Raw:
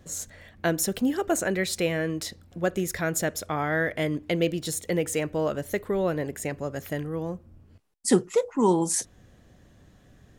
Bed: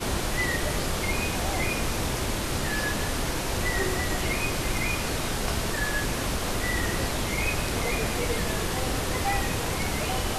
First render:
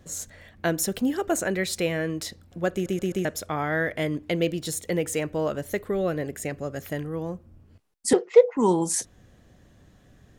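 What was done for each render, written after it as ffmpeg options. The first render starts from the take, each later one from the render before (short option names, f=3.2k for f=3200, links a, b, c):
-filter_complex "[0:a]asettb=1/sr,asplit=3[a][b][c];[a]atrim=end=5.844[d];[b]atrim=start=5.84:end=6.85,asetpts=PTS-STARTPTS,afade=t=in:d=0.004:c=qsin,afade=t=out:st=1.006:d=0.004:c=qsin,bandreject=f=940:w=5.3[e];[c]atrim=start=6.846[f];[d][e]acrossfade=d=0.004:c1=hsin:c2=qsin[g];[g][f]acrossfade=d=0.004:c1=qsin:c2=hsin,asettb=1/sr,asplit=3[h][i][j];[h]atrim=end=8.134[k];[i]atrim=start=8.13:end=8.57,asetpts=PTS-STARTPTS,afade=t=in:d=0.004:c=qsin,afade=t=out:st=0.436:d=0.004:c=qsin,highpass=f=360:w=0.5412,highpass=f=360:w=1.3066,equalizer=f=490:t=q:w=4:g=10,equalizer=f=720:t=q:w=4:g=6,equalizer=f=1.3k:t=q:w=4:g=-4,equalizer=f=2.1k:t=q:w=4:g=8,lowpass=f=4.9k:w=0.5412,lowpass=f=4.9k:w=1.3066[l];[j]atrim=start=8.566[m];[k][l]acrossfade=d=0.004:c1=hsin:c2=qsin[n];[n][m]acrossfade=d=0.004:c1=qsin:c2=hsin,asplit=5[o][p][q][r][s];[o]atrim=end=2.862[t];[p]atrim=start=2.728:end=2.862[u];[q]atrim=start=2.728:end=2.862[v];[r]atrim=start=2.728:end=2.862[w];[s]atrim=start=3.248[x];[t][u]acrossfade=d=0.004:c1=hsin:c2=hsin[y];[y][v]acrossfade=d=0.004:c1=hsin:c2=hsin[z];[z][w]acrossfade=d=0.004:c1=hsin:c2=hsin[aa];[aa][x]acrossfade=d=0.004:c1=hsin:c2=hsin"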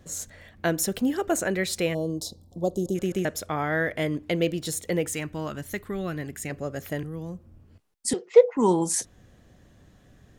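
-filter_complex "[0:a]asplit=3[a][b][c];[a]afade=t=out:st=1.93:d=0.02[d];[b]asuperstop=centerf=1900:order=8:qfactor=0.71,afade=t=in:st=1.93:d=0.02,afade=t=out:st=2.94:d=0.02[e];[c]afade=t=in:st=2.94:d=0.02[f];[d][e][f]amix=inputs=3:normalize=0,asettb=1/sr,asplit=3[g][h][i];[g]atrim=end=5.084[j];[h]atrim=start=5.08:end=6.5,asetpts=PTS-STARTPTS,afade=t=in:d=0.004:c=qsin,afade=t=out:st=1.416:d=0.004:c=qsin,equalizer=f=520:w=1.5:g=-11.5[k];[i]atrim=start=6.496[l];[j][k]acrossfade=d=0.004:c1=hsin:c2=qsin[m];[m][l]acrossfade=d=0.004:c1=qsin:c2=hsin,asettb=1/sr,asplit=3[n][o][p];[n]atrim=end=7.034[q];[o]atrim=start=7.03:end=8.35,asetpts=PTS-STARTPTS,afade=t=in:d=0.004:c=qsin,afade=t=out:st=1.316:d=0.004:c=qsin,acrossover=split=250|3000[r][s][t];[s]acompressor=threshold=-55dB:ratio=1.5:attack=3.2:release=140:knee=2.83:detection=peak[u];[r][u][t]amix=inputs=3:normalize=0[v];[p]atrim=start=8.346[w];[q][v]acrossfade=d=0.004:c1=hsin:c2=qsin[x];[x][w]acrossfade=d=0.004:c1=qsin:c2=hsin"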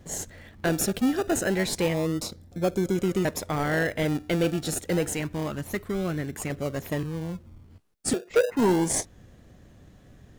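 -filter_complex "[0:a]asplit=2[a][b];[b]acrusher=samples=33:mix=1:aa=0.000001:lfo=1:lforange=19.8:lforate=0.28,volume=-6dB[c];[a][c]amix=inputs=2:normalize=0,asoftclip=type=tanh:threshold=-15dB"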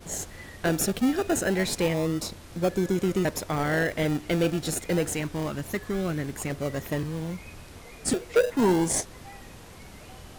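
-filter_complex "[1:a]volume=-19dB[a];[0:a][a]amix=inputs=2:normalize=0"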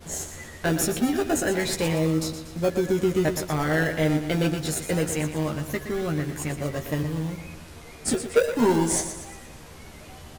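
-filter_complex "[0:a]asplit=2[a][b];[b]adelay=13,volume=-5dB[c];[a][c]amix=inputs=2:normalize=0,aecho=1:1:119|238|357|476|595:0.316|0.149|0.0699|0.0328|0.0154"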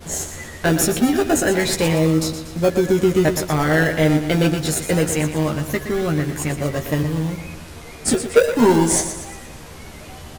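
-af "volume=6.5dB"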